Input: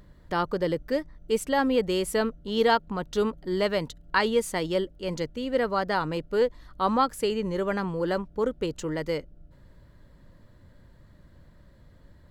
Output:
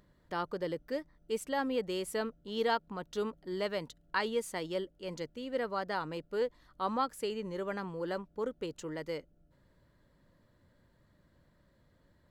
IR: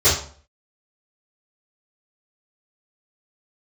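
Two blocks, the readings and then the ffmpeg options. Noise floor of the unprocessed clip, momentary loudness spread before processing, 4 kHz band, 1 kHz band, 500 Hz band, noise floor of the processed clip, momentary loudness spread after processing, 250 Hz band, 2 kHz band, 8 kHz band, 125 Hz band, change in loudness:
-55 dBFS, 7 LU, -8.5 dB, -8.5 dB, -9.0 dB, -69 dBFS, 7 LU, -10.0 dB, -8.5 dB, -8.5 dB, -11.5 dB, -9.0 dB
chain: -af "lowshelf=f=100:g=-11,volume=-8.5dB"

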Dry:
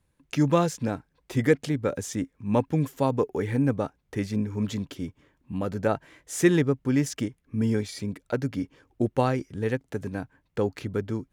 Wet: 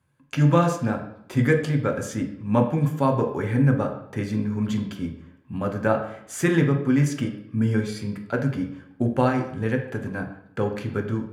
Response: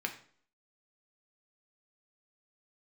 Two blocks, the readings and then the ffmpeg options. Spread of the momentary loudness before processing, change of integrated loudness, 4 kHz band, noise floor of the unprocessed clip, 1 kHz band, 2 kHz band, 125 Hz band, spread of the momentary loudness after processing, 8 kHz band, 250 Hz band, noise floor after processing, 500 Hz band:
11 LU, +3.0 dB, 0.0 dB, -72 dBFS, +4.0 dB, +5.0 dB, +5.5 dB, 11 LU, -1.5 dB, +3.0 dB, -53 dBFS, +1.5 dB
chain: -filter_complex "[1:a]atrim=start_sample=2205,asetrate=29547,aresample=44100[a];[0:a][a]afir=irnorm=-1:irlink=0,volume=-1.5dB"

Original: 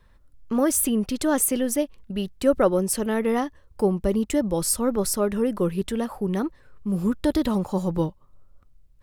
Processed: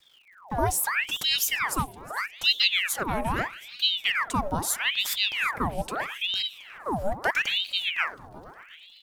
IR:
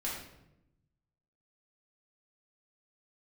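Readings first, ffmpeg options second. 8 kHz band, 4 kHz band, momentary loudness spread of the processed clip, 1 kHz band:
-4.5 dB, +14.5 dB, 9 LU, +2.5 dB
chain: -filter_complex "[0:a]acrusher=bits=9:mix=0:aa=0.000001,bandreject=f=116.4:t=h:w=4,bandreject=f=232.8:t=h:w=4,bandreject=f=349.2:t=h:w=4,bandreject=f=465.6:t=h:w=4,afreqshift=88,asplit=7[a][b][c][d][e][f][g];[b]adelay=361,afreqshift=70,volume=-20dB[h];[c]adelay=722,afreqshift=140,volume=-23.9dB[i];[d]adelay=1083,afreqshift=210,volume=-27.8dB[j];[e]adelay=1444,afreqshift=280,volume=-31.6dB[k];[f]adelay=1805,afreqshift=350,volume=-35.5dB[l];[g]adelay=2166,afreqshift=420,volume=-39.4dB[m];[a][h][i][j][k][l][m]amix=inputs=7:normalize=0,aeval=exprs='val(0)*sin(2*PI*1900*n/s+1900*0.85/0.78*sin(2*PI*0.78*n/s))':c=same,volume=-1dB"

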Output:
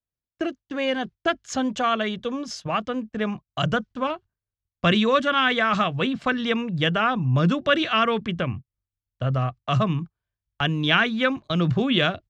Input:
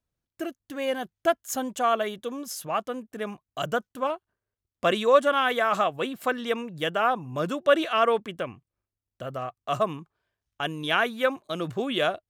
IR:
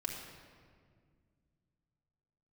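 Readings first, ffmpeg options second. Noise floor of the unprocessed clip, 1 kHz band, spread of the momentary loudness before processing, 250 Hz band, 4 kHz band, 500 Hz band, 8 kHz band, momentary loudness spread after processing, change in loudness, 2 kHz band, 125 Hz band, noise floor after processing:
under -85 dBFS, +1.0 dB, 13 LU, +8.5 dB, +6.5 dB, -1.0 dB, -2.5 dB, 10 LU, +3.5 dB, +5.0 dB, +15.5 dB, under -85 dBFS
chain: -filter_complex "[0:a]lowpass=f=5.5k:w=0.5412,lowpass=f=5.5k:w=1.3066,agate=range=-18dB:threshold=-43dB:ratio=16:detection=peak,asubboost=boost=4.5:cutoff=170,acrossover=split=380|1300[a][b][c];[a]asplit=2[d][e];[e]adelay=23,volume=-9.5dB[f];[d][f]amix=inputs=2:normalize=0[g];[b]acompressor=threshold=-35dB:ratio=6[h];[g][h][c]amix=inputs=3:normalize=0,volume=7dB"

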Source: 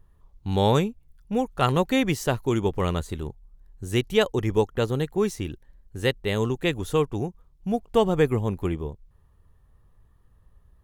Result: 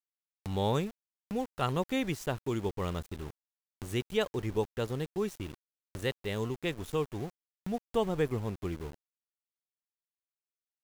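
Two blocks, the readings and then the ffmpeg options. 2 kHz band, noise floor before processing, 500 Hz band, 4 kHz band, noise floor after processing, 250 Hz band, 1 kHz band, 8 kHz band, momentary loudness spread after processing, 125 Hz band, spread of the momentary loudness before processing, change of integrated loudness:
-9.0 dB, -59 dBFS, -9.0 dB, -9.0 dB, under -85 dBFS, -9.0 dB, -9.0 dB, -8.5 dB, 13 LU, -9.0 dB, 13 LU, -9.0 dB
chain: -af "aeval=exprs='val(0)*gte(abs(val(0)),0.0188)':c=same,acompressor=mode=upward:threshold=-26dB:ratio=2.5,volume=-9dB"

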